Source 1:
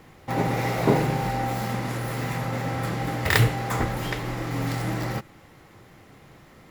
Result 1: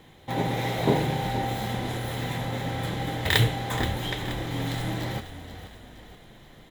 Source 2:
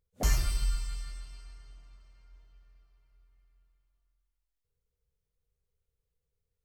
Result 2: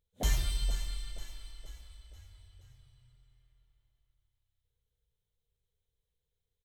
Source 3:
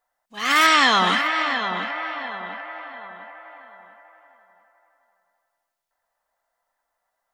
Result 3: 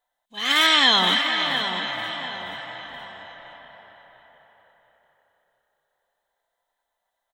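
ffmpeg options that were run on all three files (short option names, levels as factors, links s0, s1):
-filter_complex "[0:a]superequalizer=10b=0.562:13b=2.51:14b=0.708,asplit=6[s0][s1][s2][s3][s4][s5];[s1]adelay=476,afreqshift=-33,volume=0.251[s6];[s2]adelay=952,afreqshift=-66,volume=0.126[s7];[s3]adelay=1428,afreqshift=-99,volume=0.0631[s8];[s4]adelay=1904,afreqshift=-132,volume=0.0313[s9];[s5]adelay=2380,afreqshift=-165,volume=0.0157[s10];[s0][s6][s7][s8][s9][s10]amix=inputs=6:normalize=0,volume=0.75"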